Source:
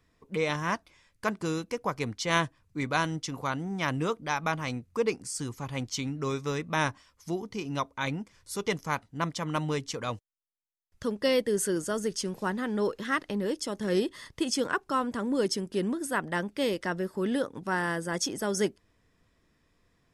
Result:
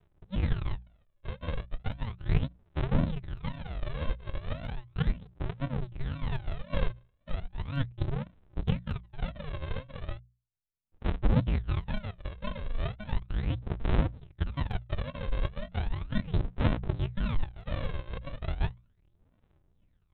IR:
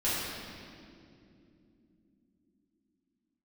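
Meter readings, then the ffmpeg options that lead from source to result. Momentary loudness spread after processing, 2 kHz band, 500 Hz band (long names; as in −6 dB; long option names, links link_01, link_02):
10 LU, −11.0 dB, −11.0 dB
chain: -af "aresample=8000,acrusher=samples=27:mix=1:aa=0.000001:lfo=1:lforange=16.2:lforate=1.9,aresample=44100,aphaser=in_gain=1:out_gain=1:delay=1.9:decay=0.6:speed=0.36:type=sinusoidal,bandreject=frequency=60:width_type=h:width=6,bandreject=frequency=120:width_type=h:width=6,bandreject=frequency=180:width_type=h:width=6,volume=-5dB"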